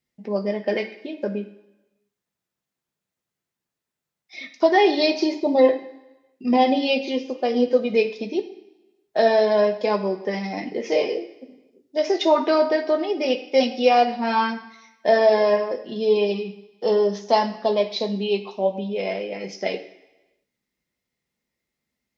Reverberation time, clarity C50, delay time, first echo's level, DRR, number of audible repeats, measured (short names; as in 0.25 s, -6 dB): 1.0 s, 11.0 dB, none, none, 3.0 dB, none